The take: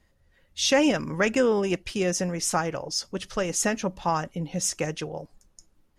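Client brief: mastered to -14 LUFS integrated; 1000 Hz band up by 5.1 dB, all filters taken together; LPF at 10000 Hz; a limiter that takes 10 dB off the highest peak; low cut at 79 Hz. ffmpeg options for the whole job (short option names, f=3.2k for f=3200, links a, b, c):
-af "highpass=79,lowpass=10k,equalizer=f=1k:t=o:g=6.5,volume=14.5dB,alimiter=limit=-3dB:level=0:latency=1"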